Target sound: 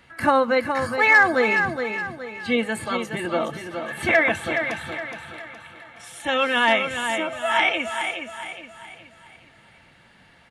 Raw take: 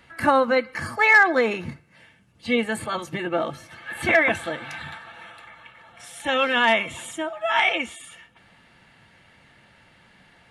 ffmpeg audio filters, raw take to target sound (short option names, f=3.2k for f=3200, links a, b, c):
-af "aecho=1:1:418|836|1254|1672|2090:0.447|0.183|0.0751|0.0308|0.0126"